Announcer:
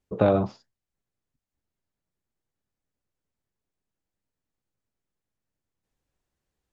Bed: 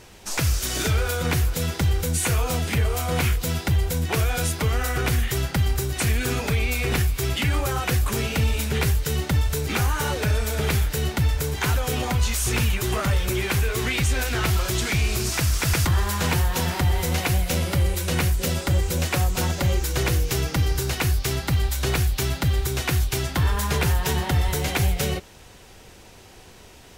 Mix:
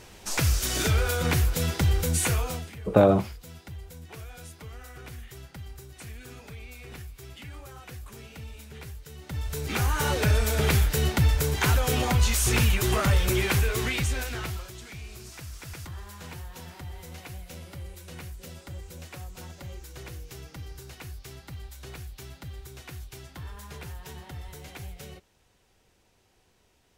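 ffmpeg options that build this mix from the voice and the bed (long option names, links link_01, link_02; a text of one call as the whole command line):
ffmpeg -i stem1.wav -i stem2.wav -filter_complex "[0:a]adelay=2750,volume=2.5dB[link_01];[1:a]volume=18.5dB,afade=type=out:start_time=2.22:duration=0.51:silence=0.11885,afade=type=in:start_time=9.2:duration=0.98:silence=0.1,afade=type=out:start_time=13.38:duration=1.34:silence=0.112202[link_02];[link_01][link_02]amix=inputs=2:normalize=0" out.wav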